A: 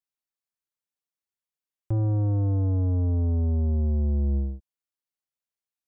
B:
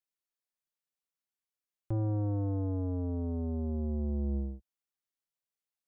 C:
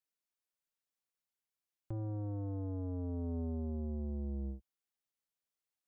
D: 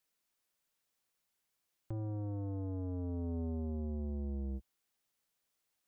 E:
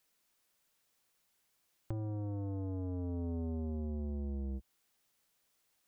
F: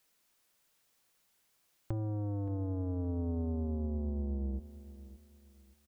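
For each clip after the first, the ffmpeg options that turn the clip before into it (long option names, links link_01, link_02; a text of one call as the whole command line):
ffmpeg -i in.wav -af "equalizer=frequency=84:width=2.1:gain=-9.5,volume=-3dB" out.wav
ffmpeg -i in.wav -af "alimiter=level_in=7.5dB:limit=-24dB:level=0:latency=1:release=41,volume=-7.5dB,volume=-1.5dB" out.wav
ffmpeg -i in.wav -af "alimiter=level_in=18dB:limit=-24dB:level=0:latency=1:release=23,volume=-18dB,volume=9dB" out.wav
ffmpeg -i in.wav -af "acompressor=threshold=-42dB:ratio=6,volume=6.5dB" out.wav
ffmpeg -i in.wav -af "aecho=1:1:572|1144|1716:0.168|0.0504|0.0151,volume=3dB" out.wav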